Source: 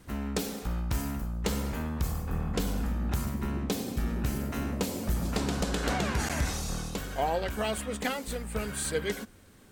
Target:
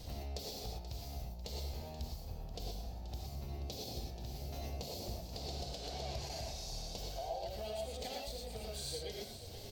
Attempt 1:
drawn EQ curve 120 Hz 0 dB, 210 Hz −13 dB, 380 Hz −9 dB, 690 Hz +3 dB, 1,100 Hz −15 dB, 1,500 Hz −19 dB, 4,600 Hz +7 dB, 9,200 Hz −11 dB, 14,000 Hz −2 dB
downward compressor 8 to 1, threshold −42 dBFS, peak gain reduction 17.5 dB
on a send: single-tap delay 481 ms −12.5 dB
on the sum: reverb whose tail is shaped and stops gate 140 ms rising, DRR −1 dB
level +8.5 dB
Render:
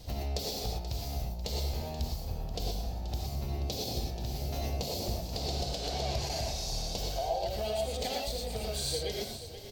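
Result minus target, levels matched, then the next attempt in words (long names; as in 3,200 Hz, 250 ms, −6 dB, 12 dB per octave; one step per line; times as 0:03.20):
downward compressor: peak gain reduction −8.5 dB
drawn EQ curve 120 Hz 0 dB, 210 Hz −13 dB, 380 Hz −9 dB, 690 Hz +3 dB, 1,100 Hz −15 dB, 1,500 Hz −19 dB, 4,600 Hz +7 dB, 9,200 Hz −11 dB, 14,000 Hz −2 dB
downward compressor 8 to 1, threshold −52 dBFS, peak gain reduction 26 dB
on a send: single-tap delay 481 ms −12.5 dB
on the sum: reverb whose tail is shaped and stops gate 140 ms rising, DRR −1 dB
level +8.5 dB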